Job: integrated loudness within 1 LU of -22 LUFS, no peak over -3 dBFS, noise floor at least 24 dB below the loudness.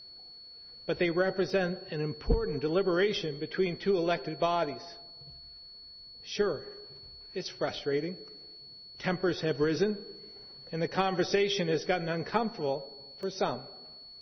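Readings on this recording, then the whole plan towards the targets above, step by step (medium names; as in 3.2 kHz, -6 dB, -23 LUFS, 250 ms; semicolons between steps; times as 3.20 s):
dropouts 2; longest dropout 1.8 ms; steady tone 4.4 kHz; tone level -47 dBFS; loudness -31.0 LUFS; peak level -12.5 dBFS; loudness target -22.0 LUFS
-> interpolate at 1.50/13.23 s, 1.8 ms; band-stop 4.4 kHz, Q 30; trim +9 dB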